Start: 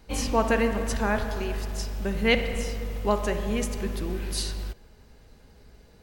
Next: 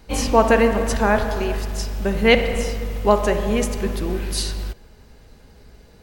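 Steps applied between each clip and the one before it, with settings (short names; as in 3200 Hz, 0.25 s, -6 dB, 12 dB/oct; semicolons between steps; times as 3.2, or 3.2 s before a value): dynamic EQ 640 Hz, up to +4 dB, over -36 dBFS, Q 0.71; gain +5.5 dB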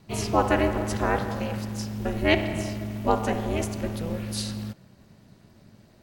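ring modulator 160 Hz; gain -4 dB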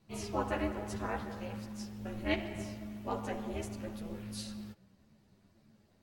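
ensemble effect; gain -9 dB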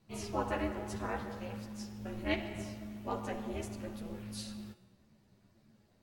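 resonator 120 Hz, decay 1 s, harmonics all, mix 60%; gain +6.5 dB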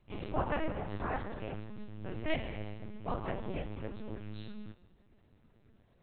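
LPC vocoder at 8 kHz pitch kept; gain +2 dB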